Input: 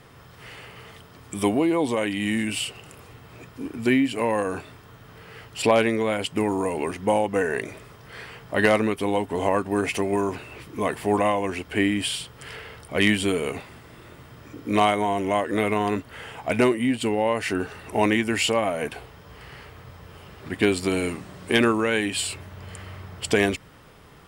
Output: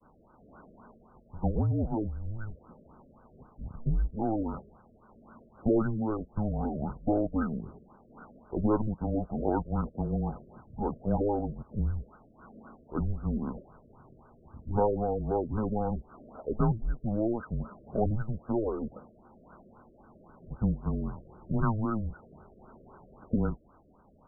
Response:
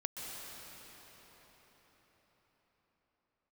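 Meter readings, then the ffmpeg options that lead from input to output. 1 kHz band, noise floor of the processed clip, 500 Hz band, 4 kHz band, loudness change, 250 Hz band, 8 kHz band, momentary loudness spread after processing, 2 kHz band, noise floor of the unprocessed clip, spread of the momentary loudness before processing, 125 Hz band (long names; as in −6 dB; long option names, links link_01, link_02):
−10.0 dB, −60 dBFS, −10.0 dB, below −40 dB, −8.0 dB, −6.5 dB, below −40 dB, 13 LU, −24.5 dB, −49 dBFS, 19 LU, +1.5 dB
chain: -af "highpass=frequency=220:width_type=q:width=0.5412,highpass=frequency=220:width_type=q:width=1.307,lowpass=frequency=2300:width_type=q:width=0.5176,lowpass=frequency=2300:width_type=q:width=0.7071,lowpass=frequency=2300:width_type=q:width=1.932,afreqshift=-220,agate=range=-33dB:threshold=-51dB:ratio=3:detection=peak,afftfilt=real='re*lt(b*sr/1024,630*pow(1600/630,0.5+0.5*sin(2*PI*3.8*pts/sr)))':imag='im*lt(b*sr/1024,630*pow(1600/630,0.5+0.5*sin(2*PI*3.8*pts/sr)))':win_size=1024:overlap=0.75,volume=-5.5dB"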